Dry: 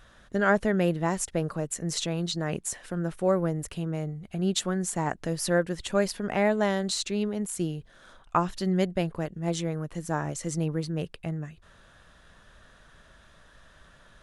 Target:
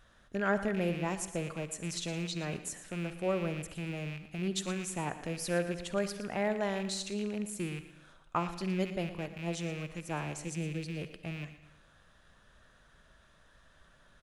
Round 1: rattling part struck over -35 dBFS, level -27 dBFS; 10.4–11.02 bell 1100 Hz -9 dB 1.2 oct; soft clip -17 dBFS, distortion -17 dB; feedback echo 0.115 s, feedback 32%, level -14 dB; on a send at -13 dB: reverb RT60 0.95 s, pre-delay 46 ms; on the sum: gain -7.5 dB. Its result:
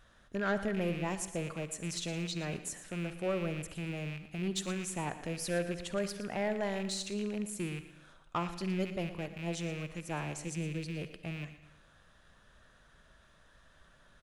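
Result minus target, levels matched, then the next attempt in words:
soft clip: distortion +19 dB
rattling part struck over -35 dBFS, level -27 dBFS; 10.4–11.02 bell 1100 Hz -9 dB 1.2 oct; soft clip -5.5 dBFS, distortion -36 dB; feedback echo 0.115 s, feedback 32%, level -14 dB; on a send at -13 dB: reverb RT60 0.95 s, pre-delay 46 ms; on the sum: gain -7.5 dB

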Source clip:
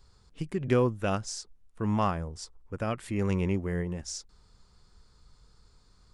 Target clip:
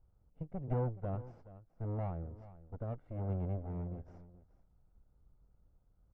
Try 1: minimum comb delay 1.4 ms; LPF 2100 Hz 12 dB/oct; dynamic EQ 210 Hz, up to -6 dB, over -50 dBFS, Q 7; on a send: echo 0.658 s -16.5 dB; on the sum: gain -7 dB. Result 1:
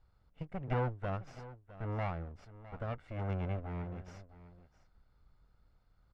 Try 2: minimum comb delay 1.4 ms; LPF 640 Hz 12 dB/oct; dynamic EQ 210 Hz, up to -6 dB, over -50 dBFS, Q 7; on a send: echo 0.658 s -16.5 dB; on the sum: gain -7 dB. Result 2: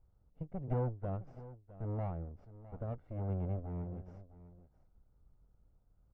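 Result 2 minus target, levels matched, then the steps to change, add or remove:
echo 0.235 s late
change: echo 0.423 s -16.5 dB

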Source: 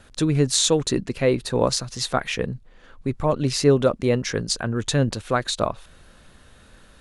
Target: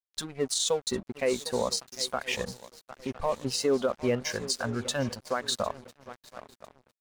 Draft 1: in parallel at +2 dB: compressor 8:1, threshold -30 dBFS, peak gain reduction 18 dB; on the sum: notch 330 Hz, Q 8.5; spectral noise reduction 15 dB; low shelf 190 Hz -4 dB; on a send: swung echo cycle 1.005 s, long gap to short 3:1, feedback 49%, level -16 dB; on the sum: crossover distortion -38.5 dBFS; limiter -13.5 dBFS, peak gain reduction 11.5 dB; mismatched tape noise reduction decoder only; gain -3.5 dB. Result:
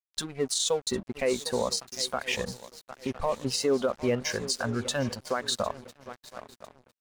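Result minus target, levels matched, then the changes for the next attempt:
compressor: peak gain reduction -7 dB
change: compressor 8:1, threshold -38 dBFS, peak gain reduction 25 dB

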